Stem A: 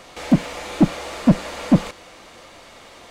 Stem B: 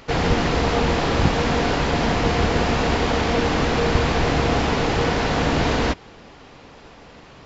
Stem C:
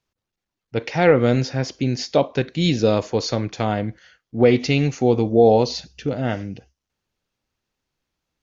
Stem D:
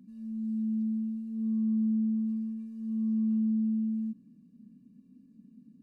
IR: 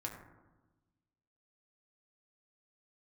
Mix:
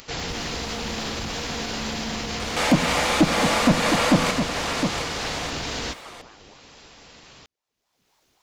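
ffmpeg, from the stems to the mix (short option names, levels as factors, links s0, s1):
-filter_complex "[0:a]equalizer=f=1200:w=0.45:g=7,alimiter=limit=0.266:level=0:latency=1:release=171,adelay=2400,volume=1.12,asplit=3[s0][s1][s2];[s1]volume=0.422[s3];[s2]volume=0.531[s4];[1:a]alimiter=limit=0.237:level=0:latency=1:release=28,highshelf=f=3100:g=11,volume=0.266[s5];[2:a]acompressor=threshold=0.0562:ratio=6,aeval=exprs='val(0)*sin(2*PI*570*n/s+570*0.75/3.8*sin(2*PI*3.8*n/s))':c=same,volume=0.133[s6];[3:a]equalizer=f=220:w=1.5:g=-12,crystalizer=i=6.5:c=0,adelay=200,volume=1.41[s7];[4:a]atrim=start_sample=2205[s8];[s3][s8]afir=irnorm=-1:irlink=0[s9];[s4]aecho=0:1:712:1[s10];[s0][s5][s6][s7][s9][s10]amix=inputs=6:normalize=0,acompressor=mode=upward:threshold=0.00708:ratio=2.5,highshelf=f=3000:g=7"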